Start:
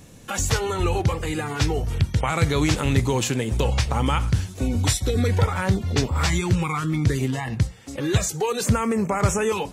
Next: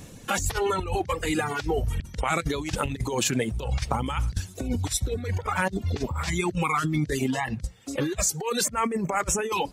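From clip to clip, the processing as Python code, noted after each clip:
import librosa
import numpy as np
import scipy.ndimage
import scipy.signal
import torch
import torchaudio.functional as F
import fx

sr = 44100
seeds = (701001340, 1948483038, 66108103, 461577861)

y = fx.dereverb_blind(x, sr, rt60_s=1.3)
y = fx.over_compress(y, sr, threshold_db=-26.0, ratio=-0.5)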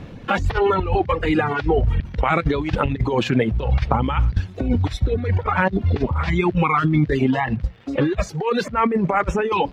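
y = fx.dmg_crackle(x, sr, seeds[0], per_s=180.0, level_db=-39.0)
y = fx.air_absorb(y, sr, metres=340.0)
y = F.gain(torch.from_numpy(y), 8.5).numpy()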